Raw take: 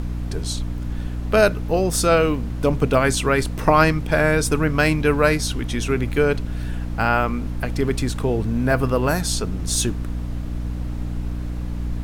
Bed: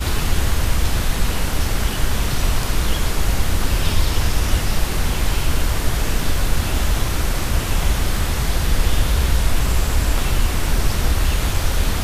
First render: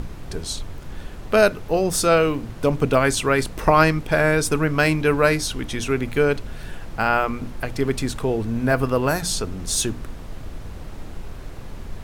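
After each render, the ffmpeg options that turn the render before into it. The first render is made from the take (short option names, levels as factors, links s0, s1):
-af "bandreject=f=60:t=h:w=6,bandreject=f=120:t=h:w=6,bandreject=f=180:t=h:w=6,bandreject=f=240:t=h:w=6,bandreject=f=300:t=h:w=6"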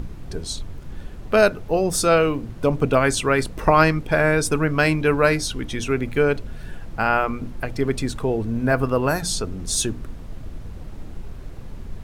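-af "afftdn=nr=6:nf=-36"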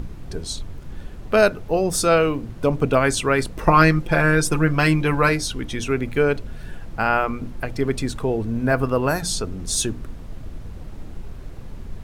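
-filter_complex "[0:a]asettb=1/sr,asplit=3[s0][s1][s2];[s0]atrim=end=3.664[s3];[s1]atrim=start=3.66:end=5.29,asetpts=PTS-STARTPTS,afade=t=in:d=0.004:c=qsin,afade=t=out:st=1.626:d=0.004:c=qsin,aecho=1:1:5.8:0.66,atrim=end_sample=71883[s4];[s2]atrim=start=5.286[s5];[s3][s4]acrossfade=d=0.004:c1=hsin:c2=qsin[s6];[s6][s5]acrossfade=d=0.004:c1=qsin:c2=hsin"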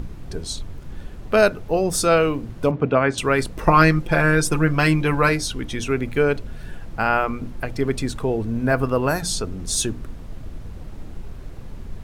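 -filter_complex "[0:a]asettb=1/sr,asplit=3[s0][s1][s2];[s0]atrim=end=2.714[s3];[s1]atrim=start=2.71:end=3.18,asetpts=PTS-STARTPTS,afade=t=in:d=0.004:c=qsin,afade=t=out:st=0.466:d=0.004:c=qsin,highpass=100,lowpass=2600[s4];[s2]atrim=start=3.176[s5];[s3][s4]acrossfade=d=0.004:c1=hsin:c2=qsin[s6];[s6][s5]acrossfade=d=0.004:c1=qsin:c2=hsin"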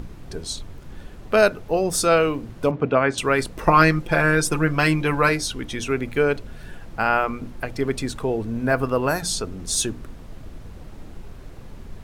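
-af "lowshelf=f=200:g=-5"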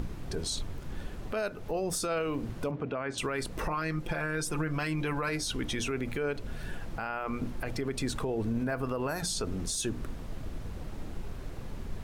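-af "acompressor=threshold=0.0631:ratio=10,alimiter=limit=0.0668:level=0:latency=1:release=33"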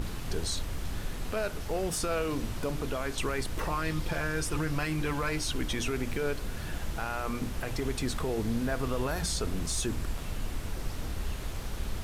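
-filter_complex "[1:a]volume=0.112[s0];[0:a][s0]amix=inputs=2:normalize=0"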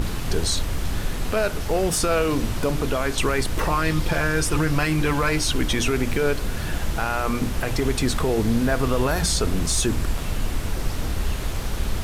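-af "volume=2.99"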